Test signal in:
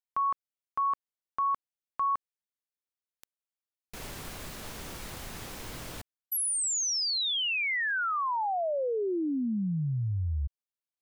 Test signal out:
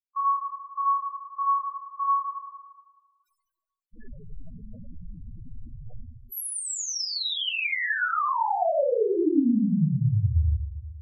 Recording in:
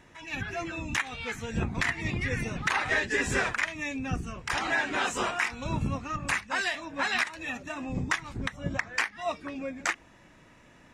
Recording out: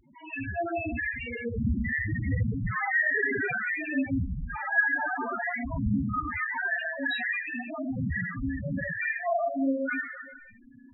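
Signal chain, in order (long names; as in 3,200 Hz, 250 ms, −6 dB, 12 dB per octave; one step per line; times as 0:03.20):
four-comb reverb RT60 1.4 s, combs from 26 ms, DRR −7.5 dB
spectral peaks only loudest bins 4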